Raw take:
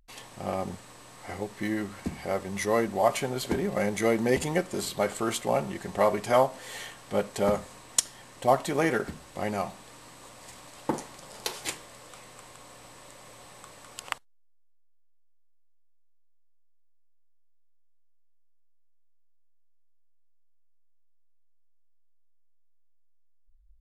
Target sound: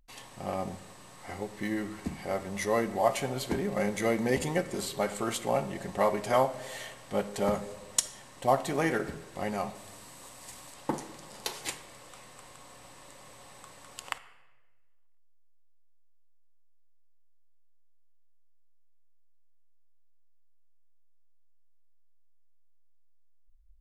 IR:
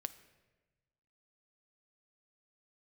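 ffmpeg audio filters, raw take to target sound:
-filter_complex "[0:a]asettb=1/sr,asplit=3[s0][s1][s2];[s0]atrim=end=9.754[s3];[s1]atrim=start=9.75:end=10.74,asetpts=PTS-STARTPTS,afade=t=in:d=0.004:c=qsin,afade=t=out:st=0.986:d=0.004:c=qsin,highshelf=f=7200:g=9[s4];[s2]atrim=start=10.736[s5];[s3][s4]acrossfade=d=0.004:c1=hsin:c2=qsin[s6];[s6][s5]acrossfade=d=0.004:c1=qsin:c2=hsin[s7];[1:a]atrim=start_sample=2205[s8];[s7][s8]afir=irnorm=-1:irlink=0"

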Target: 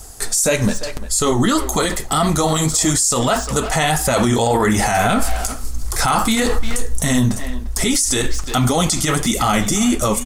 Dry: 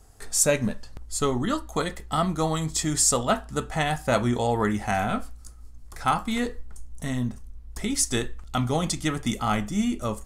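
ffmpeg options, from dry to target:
-filter_complex "[0:a]bass=f=250:g=-3,treble=f=4000:g=9,dynaudnorm=f=170:g=13:m=3.76,flanger=delay=0.8:depth=8.4:regen=-32:speed=1.7:shape=triangular,asplit=2[s0][s1];[s1]adelay=350,highpass=300,lowpass=3400,asoftclip=type=hard:threshold=0.0335,volume=0.178[s2];[s0][s2]amix=inputs=2:normalize=0,alimiter=level_in=20:limit=0.891:release=50:level=0:latency=1,volume=0.473"

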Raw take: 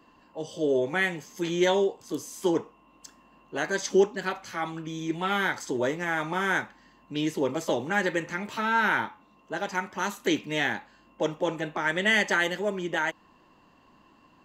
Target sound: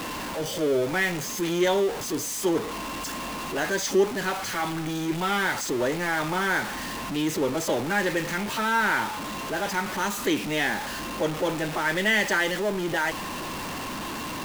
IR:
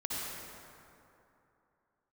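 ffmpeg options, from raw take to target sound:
-af "aeval=exprs='val(0)+0.5*0.0501*sgn(val(0))':c=same,volume=0.841"

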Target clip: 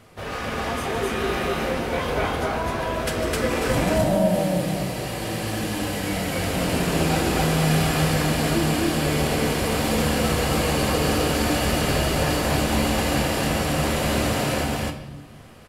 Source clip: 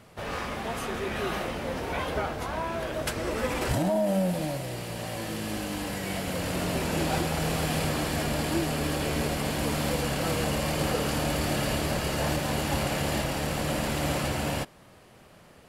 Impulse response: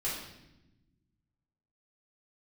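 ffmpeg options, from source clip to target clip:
-filter_complex "[0:a]bandreject=f=850:w=17,aecho=1:1:151.6|259.5:0.282|1,asplit=2[s0][s1];[1:a]atrim=start_sample=2205[s2];[s1][s2]afir=irnorm=-1:irlink=0,volume=0.422[s3];[s0][s3]amix=inputs=2:normalize=0"

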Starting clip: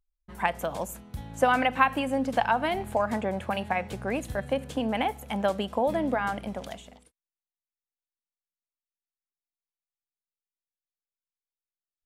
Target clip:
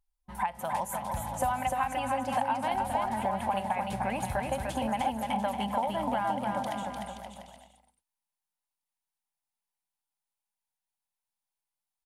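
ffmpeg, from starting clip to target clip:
-filter_complex "[0:a]superequalizer=6b=0.447:7b=0.355:9b=2.82:16b=1.78,acompressor=threshold=0.0398:ratio=6,asplit=2[s0][s1];[s1]aecho=0:1:300|525|693.8|820.3|915.2:0.631|0.398|0.251|0.158|0.1[s2];[s0][s2]amix=inputs=2:normalize=0"

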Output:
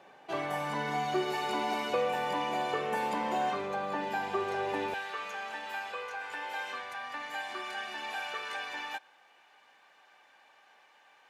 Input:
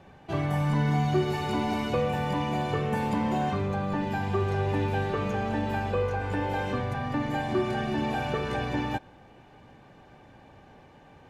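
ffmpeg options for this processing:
-af "asetnsamples=n=441:p=0,asendcmd='4.94 highpass f 1200',highpass=450"

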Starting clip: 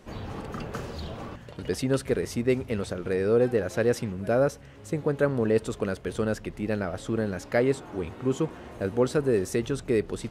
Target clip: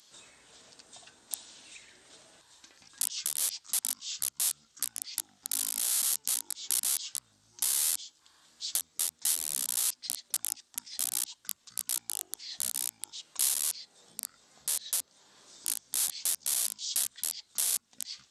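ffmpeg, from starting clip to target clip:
-af "aeval=exprs='(mod(11.2*val(0)+1,2)-1)/11.2':c=same,acompressor=threshold=0.0141:ratio=6,aexciter=amount=3.2:drive=4.2:freq=5800,asetrate=24828,aresample=44100,aderivative,volume=1.88"

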